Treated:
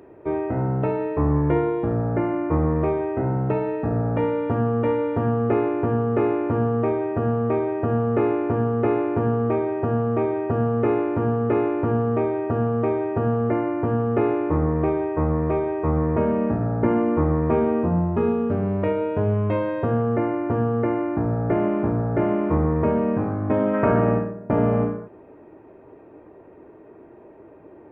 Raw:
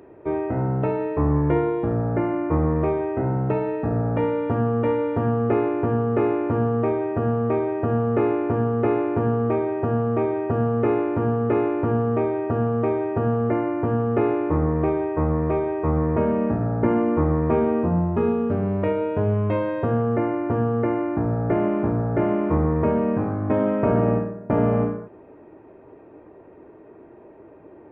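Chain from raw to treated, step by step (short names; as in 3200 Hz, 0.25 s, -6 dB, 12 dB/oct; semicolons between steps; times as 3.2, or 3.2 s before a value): 23.73–24.31 bell 1600 Hz +9.5 dB -> +2 dB 1.4 oct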